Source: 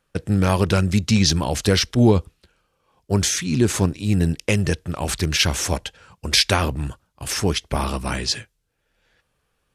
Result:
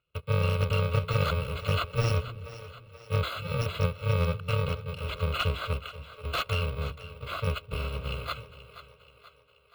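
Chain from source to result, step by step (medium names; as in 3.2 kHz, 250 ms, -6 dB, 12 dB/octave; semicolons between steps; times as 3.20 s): bit-reversed sample order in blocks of 128 samples; high-pass 74 Hz; static phaser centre 1.2 kHz, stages 8; wavefolder -11.5 dBFS; distance through air 220 m; two-band feedback delay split 370 Hz, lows 255 ms, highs 480 ms, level -14 dB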